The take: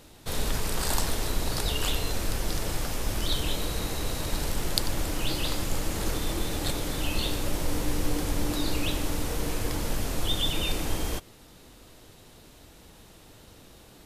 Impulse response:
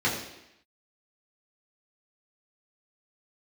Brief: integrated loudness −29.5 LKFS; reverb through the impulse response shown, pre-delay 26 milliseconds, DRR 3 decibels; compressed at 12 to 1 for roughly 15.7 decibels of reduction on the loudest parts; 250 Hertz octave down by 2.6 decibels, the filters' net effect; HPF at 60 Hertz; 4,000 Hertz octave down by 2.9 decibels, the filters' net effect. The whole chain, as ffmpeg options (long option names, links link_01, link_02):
-filter_complex "[0:a]highpass=60,equalizer=frequency=250:width_type=o:gain=-3.5,equalizer=frequency=4000:width_type=o:gain=-3.5,acompressor=threshold=-40dB:ratio=12,asplit=2[link_01][link_02];[1:a]atrim=start_sample=2205,adelay=26[link_03];[link_02][link_03]afir=irnorm=-1:irlink=0,volume=-16dB[link_04];[link_01][link_04]amix=inputs=2:normalize=0,volume=13dB"